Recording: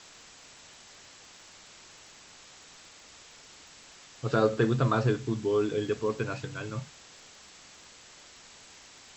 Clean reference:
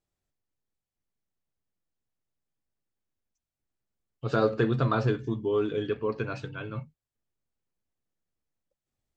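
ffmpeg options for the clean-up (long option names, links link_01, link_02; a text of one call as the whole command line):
ffmpeg -i in.wav -af "adeclick=threshold=4,afwtdn=0.004" out.wav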